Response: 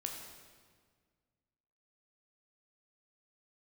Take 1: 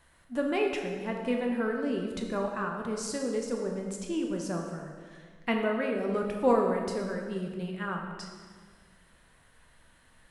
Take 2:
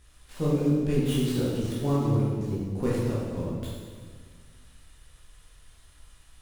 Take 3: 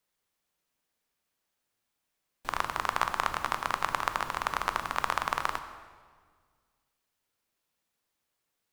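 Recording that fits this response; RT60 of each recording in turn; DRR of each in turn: 1; 1.7 s, 1.7 s, 1.7 s; 1.0 dB, -7.5 dB, 8.5 dB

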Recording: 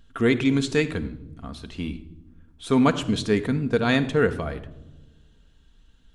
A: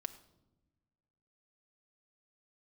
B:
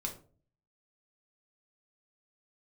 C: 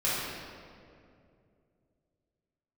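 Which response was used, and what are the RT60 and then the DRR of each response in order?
A; no single decay rate, 0.45 s, 2.5 s; 7.5 dB, 1.5 dB, -10.5 dB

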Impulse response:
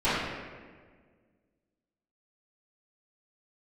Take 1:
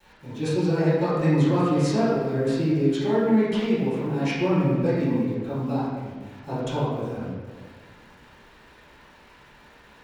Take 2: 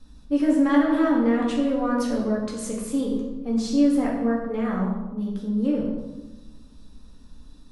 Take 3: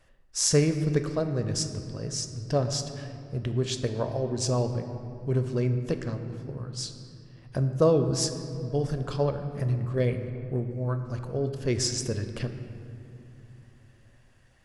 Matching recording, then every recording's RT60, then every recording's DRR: 1; 1.6 s, 1.1 s, 2.9 s; -17.0 dB, -3.5 dB, 7.0 dB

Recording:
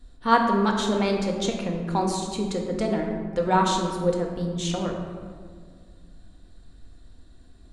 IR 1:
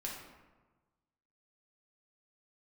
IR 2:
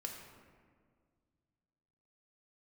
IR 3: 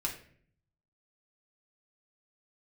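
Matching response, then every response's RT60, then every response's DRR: 2; 1.3 s, 1.9 s, 0.55 s; -3.5 dB, 1.0 dB, -1.5 dB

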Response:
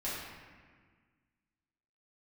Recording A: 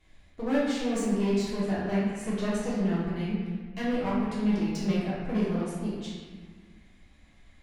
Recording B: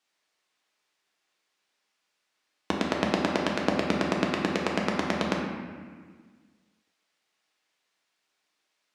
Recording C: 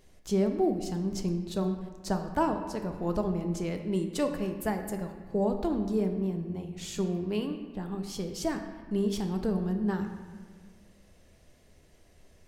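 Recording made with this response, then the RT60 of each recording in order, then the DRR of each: A; 1.6 s, 1.6 s, 1.6 s; -9.5 dB, -1.5 dB, 5.0 dB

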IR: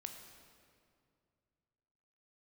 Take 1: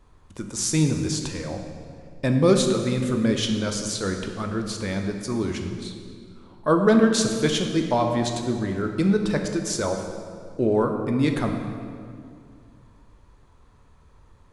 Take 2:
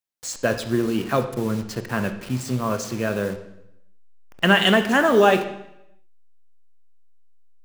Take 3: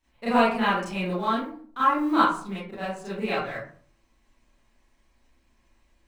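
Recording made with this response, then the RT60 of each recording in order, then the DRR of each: 1; 2.3 s, 0.80 s, 0.50 s; 4.0 dB, 8.0 dB, -12.0 dB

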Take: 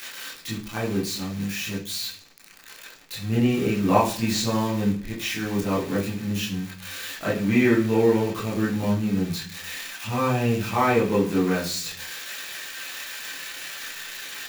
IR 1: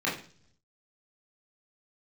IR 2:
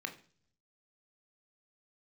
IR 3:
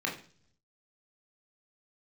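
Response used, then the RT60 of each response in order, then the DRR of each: 1; 0.50 s, no single decay rate, no single decay rate; -7.5 dB, 5.0 dB, -2.0 dB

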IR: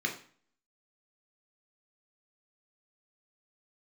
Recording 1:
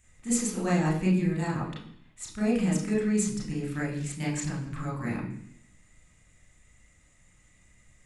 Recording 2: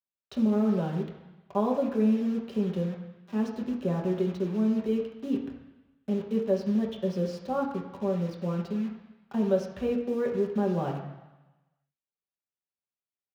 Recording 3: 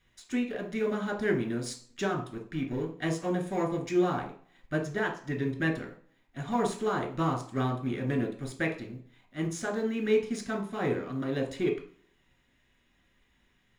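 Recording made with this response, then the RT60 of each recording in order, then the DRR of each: 3; 0.70 s, 1.1 s, 0.45 s; -5.5 dB, -1.5 dB, 1.0 dB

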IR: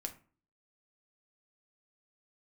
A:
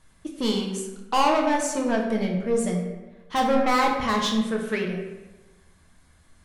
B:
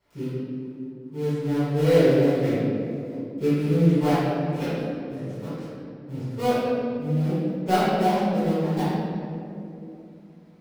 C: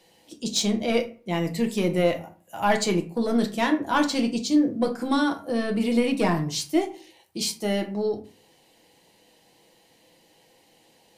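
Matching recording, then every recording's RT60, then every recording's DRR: C; 1.1 s, 2.8 s, 0.40 s; 0.0 dB, -15.0 dB, 4.5 dB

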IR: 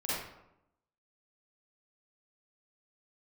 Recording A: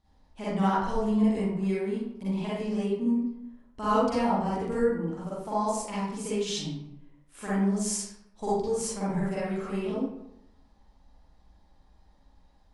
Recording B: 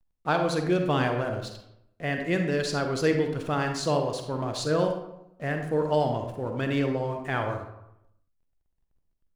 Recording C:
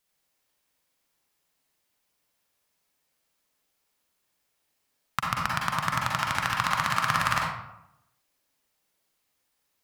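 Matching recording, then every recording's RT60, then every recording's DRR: A; 0.85 s, 0.85 s, 0.85 s; -10.0 dB, 4.0 dB, -2.5 dB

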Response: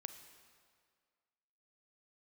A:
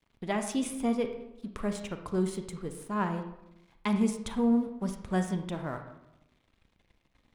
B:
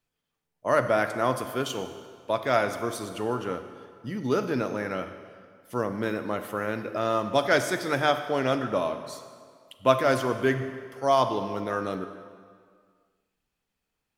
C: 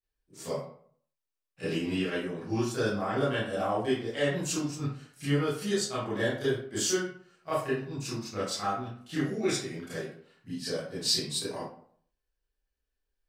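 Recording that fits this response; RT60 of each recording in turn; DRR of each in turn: B; 0.85 s, 2.0 s, 0.55 s; 6.5 dB, 8.5 dB, -12.0 dB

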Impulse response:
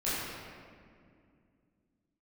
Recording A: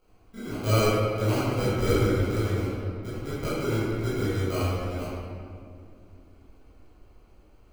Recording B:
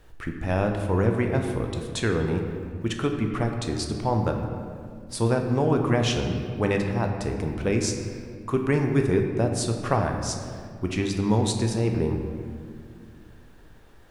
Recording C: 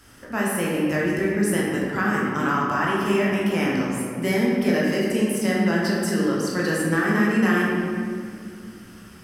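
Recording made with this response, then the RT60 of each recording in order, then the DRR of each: A; 2.3 s, 2.3 s, 2.3 s; -12.5 dB, 3.0 dB, -5.0 dB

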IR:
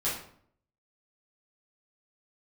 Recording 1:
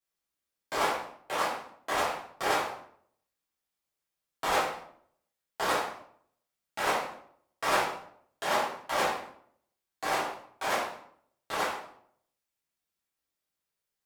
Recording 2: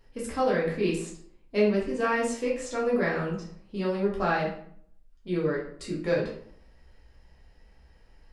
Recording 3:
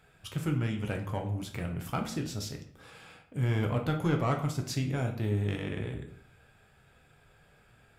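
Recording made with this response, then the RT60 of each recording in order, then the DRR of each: 1; 0.60 s, 0.60 s, 0.60 s; -10.0 dB, -5.0 dB, 2.5 dB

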